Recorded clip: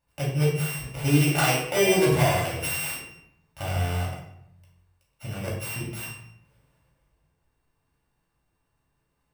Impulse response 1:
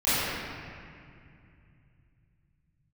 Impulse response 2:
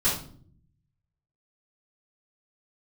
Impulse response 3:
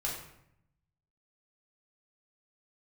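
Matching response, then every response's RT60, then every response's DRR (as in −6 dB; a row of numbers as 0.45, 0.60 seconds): 3; 2.4, 0.55, 0.75 seconds; −16.5, −12.0, −4.5 decibels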